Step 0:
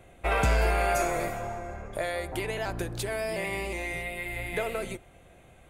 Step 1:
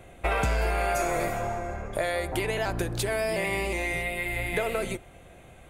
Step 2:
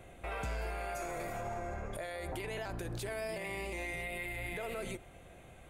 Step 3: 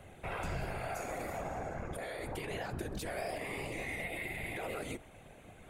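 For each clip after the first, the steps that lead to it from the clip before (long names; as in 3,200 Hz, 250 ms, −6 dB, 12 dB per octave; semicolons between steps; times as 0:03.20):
downward compressor, threshold −27 dBFS, peak gain reduction 7 dB; level +4.5 dB
brickwall limiter −27 dBFS, peak gain reduction 12 dB; level −4.5 dB
random phases in short frames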